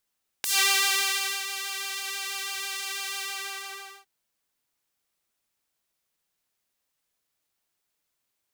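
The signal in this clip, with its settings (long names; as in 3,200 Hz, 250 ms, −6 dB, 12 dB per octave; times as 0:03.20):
subtractive patch with pulse-width modulation G4, sub −29 dB, noise −28 dB, filter highpass, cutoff 1,000 Hz, Q 0.71, filter envelope 3.5 octaves, filter decay 0.14 s, filter sustain 35%, attack 1.8 ms, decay 1.00 s, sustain −13 dB, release 0.87 s, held 2.74 s, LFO 6.1 Hz, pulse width 35%, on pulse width 15%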